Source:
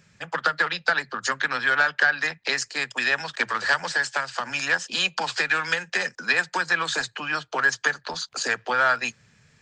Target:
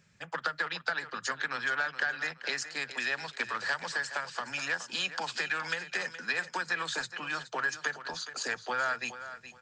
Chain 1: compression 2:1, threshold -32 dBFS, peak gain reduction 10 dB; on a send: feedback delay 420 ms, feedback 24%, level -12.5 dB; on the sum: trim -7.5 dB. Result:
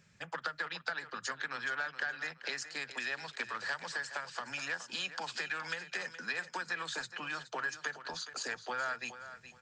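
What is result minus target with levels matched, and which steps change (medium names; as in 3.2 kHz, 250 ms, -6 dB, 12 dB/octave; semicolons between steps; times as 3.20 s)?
compression: peak gain reduction +5.5 dB
change: compression 2:1, threshold -21 dBFS, peak gain reduction 4.5 dB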